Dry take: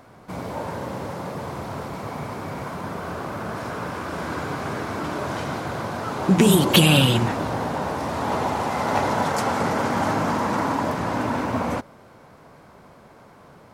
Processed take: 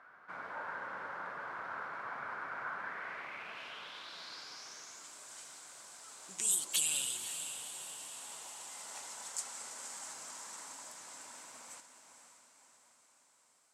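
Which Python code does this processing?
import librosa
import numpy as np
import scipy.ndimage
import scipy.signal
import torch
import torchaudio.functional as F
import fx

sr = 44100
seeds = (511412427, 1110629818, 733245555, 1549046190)

p1 = x + fx.echo_diffused(x, sr, ms=527, feedback_pct=54, wet_db=-9.0, dry=0)
p2 = fx.filter_sweep_bandpass(p1, sr, from_hz=1500.0, to_hz=7900.0, start_s=2.72, end_s=5.15, q=4.2)
y = p2 * librosa.db_to_amplitude(1.5)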